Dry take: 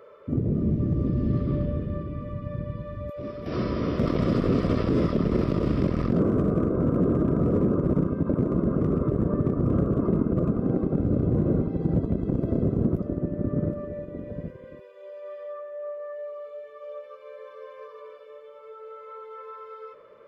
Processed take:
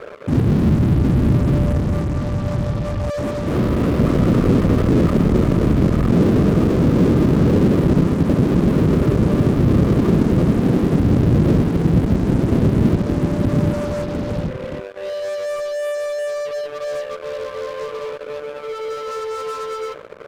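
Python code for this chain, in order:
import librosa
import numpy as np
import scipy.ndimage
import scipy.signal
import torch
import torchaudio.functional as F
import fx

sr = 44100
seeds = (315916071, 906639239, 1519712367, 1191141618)

p1 = scipy.signal.sosfilt(scipy.signal.butter(2, 2600.0, 'lowpass', fs=sr, output='sos'), x)
p2 = fx.low_shelf(p1, sr, hz=450.0, db=8.0)
p3 = fx.fuzz(p2, sr, gain_db=42.0, gate_db=-46.0)
y = p2 + (p3 * 10.0 ** (-12.0 / 20.0))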